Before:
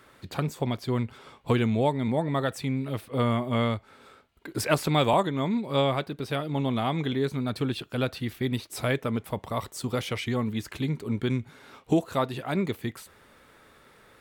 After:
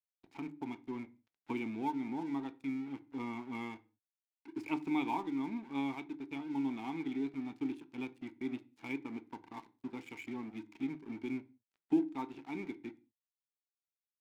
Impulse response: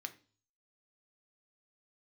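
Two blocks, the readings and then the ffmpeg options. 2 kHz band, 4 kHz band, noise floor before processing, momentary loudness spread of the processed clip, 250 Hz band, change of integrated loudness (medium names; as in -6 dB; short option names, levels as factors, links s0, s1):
-12.0 dB, -20.5 dB, -57 dBFS, 12 LU, -8.0 dB, -11.5 dB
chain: -filter_complex "[0:a]asplit=3[s0][s1][s2];[s0]bandpass=f=300:t=q:w=8,volume=1[s3];[s1]bandpass=f=870:t=q:w=8,volume=0.501[s4];[s2]bandpass=f=2240:t=q:w=8,volume=0.355[s5];[s3][s4][s5]amix=inputs=3:normalize=0,aeval=exprs='sgn(val(0))*max(abs(val(0))-0.002,0)':c=same,asplit=2[s6][s7];[1:a]atrim=start_sample=2205,afade=t=out:st=0.27:d=0.01,atrim=end_sample=12348[s8];[s7][s8]afir=irnorm=-1:irlink=0,volume=1.68[s9];[s6][s9]amix=inputs=2:normalize=0,volume=0.562"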